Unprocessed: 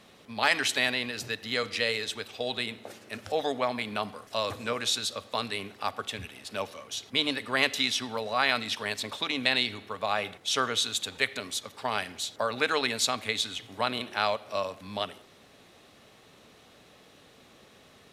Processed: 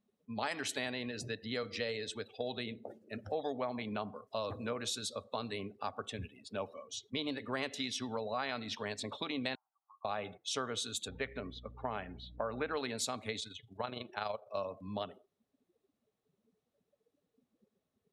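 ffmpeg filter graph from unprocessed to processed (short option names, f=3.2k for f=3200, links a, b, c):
-filter_complex "[0:a]asettb=1/sr,asplit=3[a][b][c];[a]atrim=end=9.554[d];[b]atrim=start=9.55:end=10.05,asetpts=PTS-STARTPTS,afade=t=in:d=0.004:c=qsin,afade=t=out:st=0.496:d=0.004:c=qsin,volume=27.5dB,asoftclip=hard,volume=-27.5dB,acompressor=threshold=-45dB:ratio=8:attack=3.2:release=140:knee=1:detection=peak,asuperpass=centerf=1000:order=12:qfactor=1.5[e];[c]atrim=start=10.046[f];[d][e]acrossfade=d=0.004:c1=hsin:c2=qsin[g];[g][f]acrossfade=d=0.004:c1=qsin:c2=hsin,asettb=1/sr,asplit=3[h][i][j];[h]atrim=end=11.084[k];[i]atrim=start=11.08:end=12.77,asetpts=PTS-STARTPTS,afade=t=in:d=0.004:c=qsin,afade=t=out:st=1.686:d=0.004:c=qsin,lowpass=2.8k,aeval=exprs='val(0)+0.00316*(sin(2*PI*60*n/s)+sin(2*PI*2*60*n/s)/2+sin(2*PI*3*60*n/s)/3+sin(2*PI*4*60*n/s)/4+sin(2*PI*5*60*n/s)/5)':c=same[l];[j]atrim=start=12.766[m];[k][l]acrossfade=d=0.004:c1=hsin:c2=qsin[n];[n][m]acrossfade=d=0.004:c1=qsin:c2=hsin,asettb=1/sr,asplit=3[o][p][q];[o]atrim=end=13.394[r];[p]atrim=start=13.39:end=14.57,asetpts=PTS-STARTPTS,afade=t=in:d=0.004:c=qsin,afade=t=out:st=1.176:d=0.004:c=qsin,equalizer=f=260:w=2.2:g=-5,tremolo=f=24:d=0.571[s];[q]atrim=start=14.566[t];[r][s]acrossfade=d=0.004:c1=hsin:c2=qsin[u];[u][t]acrossfade=d=0.004:c1=qsin:c2=hsin,afftdn=nr=28:nf=-42,equalizer=f=2.7k:w=0.44:g=-9,acompressor=threshold=-35dB:ratio=2.5"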